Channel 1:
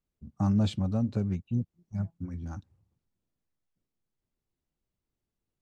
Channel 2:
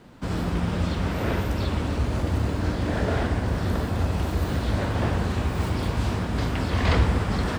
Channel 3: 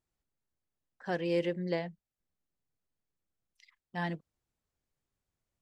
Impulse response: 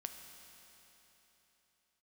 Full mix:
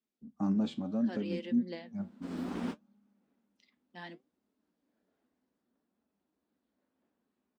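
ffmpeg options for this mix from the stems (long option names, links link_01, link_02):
-filter_complex "[0:a]lowpass=frequency=3700:poles=1,flanger=delay=1.9:depth=6.9:regen=78:speed=0.74:shape=triangular,volume=2.5dB,asplit=3[link_01][link_02][link_03];[link_02]volume=-13dB[link_04];[1:a]dynaudnorm=framelen=230:gausssize=5:maxgain=11dB,adelay=2000,volume=-13.5dB[link_05];[2:a]equalizer=frequency=3700:width_type=o:width=1.4:gain=9,volume=-8.5dB[link_06];[link_03]apad=whole_len=422814[link_07];[link_05][link_07]sidechaingate=range=-48dB:threshold=-56dB:ratio=16:detection=peak[link_08];[3:a]atrim=start_sample=2205[link_09];[link_04][link_09]afir=irnorm=-1:irlink=0[link_10];[link_01][link_08][link_06][link_10]amix=inputs=4:normalize=0,highpass=43,lowshelf=frequency=160:width_type=q:width=3:gain=-14,flanger=delay=4.6:depth=7.6:regen=68:speed=0.66:shape=sinusoidal"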